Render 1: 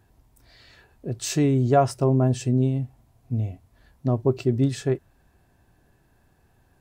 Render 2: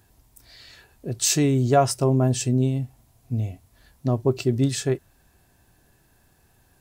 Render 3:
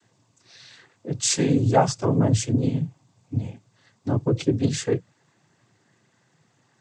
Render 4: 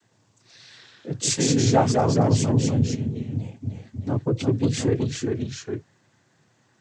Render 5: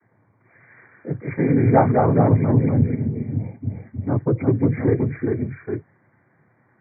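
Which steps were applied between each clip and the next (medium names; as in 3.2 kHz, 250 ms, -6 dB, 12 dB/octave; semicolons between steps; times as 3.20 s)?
treble shelf 3.1 kHz +11 dB
noise-vocoded speech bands 16
ever faster or slower copies 103 ms, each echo -1 st, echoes 2; trim -1.5 dB
brick-wall FIR low-pass 2.4 kHz; trim +3.5 dB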